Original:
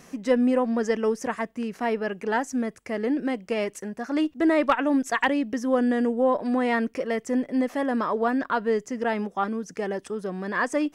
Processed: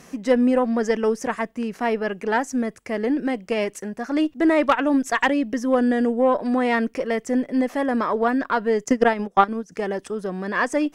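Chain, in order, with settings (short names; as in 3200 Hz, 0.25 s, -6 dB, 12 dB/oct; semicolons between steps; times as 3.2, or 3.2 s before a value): added harmonics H 4 -25 dB, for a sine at -11 dBFS; 8.84–9.72 transient shaper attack +11 dB, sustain -10 dB; gain +3 dB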